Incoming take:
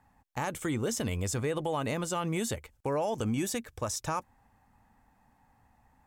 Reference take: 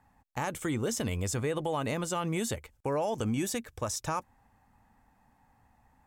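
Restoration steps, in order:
clipped peaks rebuilt −21.5 dBFS

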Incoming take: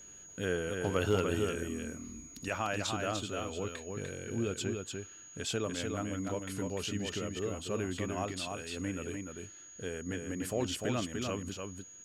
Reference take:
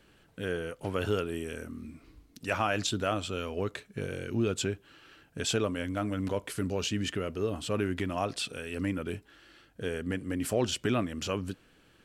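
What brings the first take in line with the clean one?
clipped peaks rebuilt −18.5 dBFS
notch filter 6,700 Hz, Q 30
echo removal 297 ms −4.5 dB
level 0 dB, from 0:02.48 +5.5 dB

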